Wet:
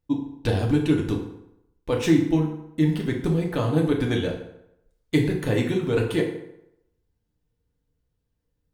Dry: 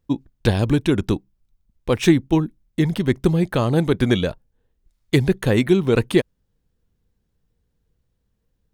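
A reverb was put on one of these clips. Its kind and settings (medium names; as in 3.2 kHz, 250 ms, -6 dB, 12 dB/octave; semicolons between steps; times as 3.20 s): FDN reverb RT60 0.81 s, low-frequency decay 0.9×, high-frequency decay 0.7×, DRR -0.5 dB; trim -8 dB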